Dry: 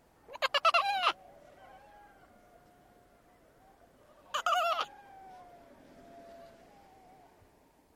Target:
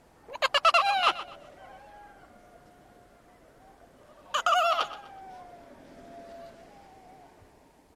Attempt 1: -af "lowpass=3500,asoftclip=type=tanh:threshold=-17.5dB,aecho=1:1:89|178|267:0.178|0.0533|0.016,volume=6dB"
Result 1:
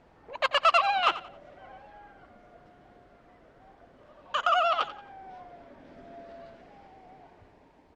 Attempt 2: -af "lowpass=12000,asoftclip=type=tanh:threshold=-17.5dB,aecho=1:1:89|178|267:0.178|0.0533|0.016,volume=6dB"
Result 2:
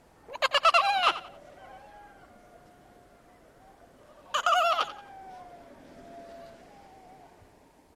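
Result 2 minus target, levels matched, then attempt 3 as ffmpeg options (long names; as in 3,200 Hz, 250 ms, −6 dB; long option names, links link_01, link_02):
echo 35 ms early
-af "lowpass=12000,asoftclip=type=tanh:threshold=-17.5dB,aecho=1:1:124|248|372:0.178|0.0533|0.016,volume=6dB"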